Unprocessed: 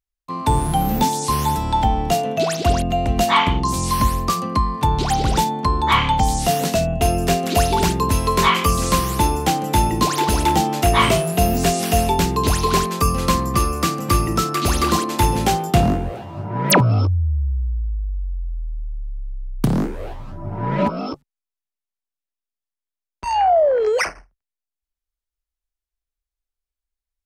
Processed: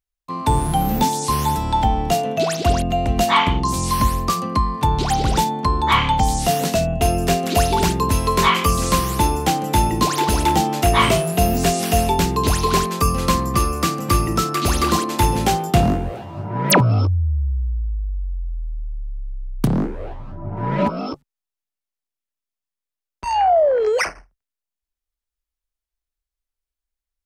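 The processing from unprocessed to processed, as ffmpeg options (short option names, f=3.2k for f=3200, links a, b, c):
-filter_complex "[0:a]asettb=1/sr,asplit=3[a][b][c];[a]atrim=end=19.674[d];[b]atrim=start=19.67:end=20.57,asetpts=PTS-STARTPTS,afade=t=in:d=0.004:c=qsin,afade=t=out:st=0.896:d=0.004:c=qsin,lowpass=f=1.9k:p=1[e];[c]atrim=start=20.566[f];[d][e]acrossfade=d=0.004:c1=hsin:c2=qsin[g];[g][f]acrossfade=d=0.004:c1=qsin:c2=hsin"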